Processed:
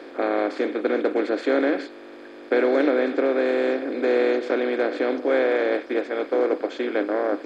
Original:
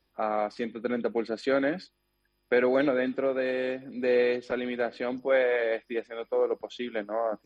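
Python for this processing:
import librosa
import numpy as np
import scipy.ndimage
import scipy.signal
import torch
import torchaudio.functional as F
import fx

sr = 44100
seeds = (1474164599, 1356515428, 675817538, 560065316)

y = fx.bin_compress(x, sr, power=0.4)
y = fx.low_shelf_res(y, sr, hz=220.0, db=-10.5, q=3.0)
y = y * librosa.db_to_amplitude(-2.5)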